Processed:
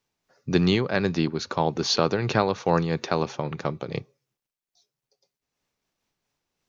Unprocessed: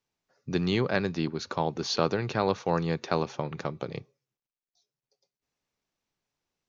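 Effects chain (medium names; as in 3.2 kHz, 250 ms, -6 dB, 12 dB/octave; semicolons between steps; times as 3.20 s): random flutter of the level, depth 60%; trim +8 dB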